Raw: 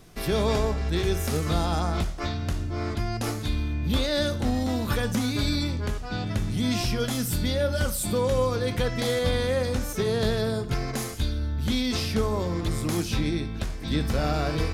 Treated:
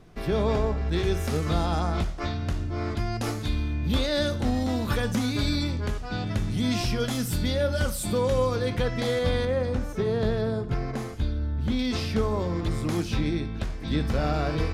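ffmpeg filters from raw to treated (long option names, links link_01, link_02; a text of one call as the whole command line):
ffmpeg -i in.wav -af "asetnsamples=nb_out_samples=441:pad=0,asendcmd='0.91 lowpass f 4400;2.95 lowpass f 7300;8.68 lowpass f 3700;9.45 lowpass f 1400;11.79 lowpass f 3500',lowpass=frequency=1800:poles=1" out.wav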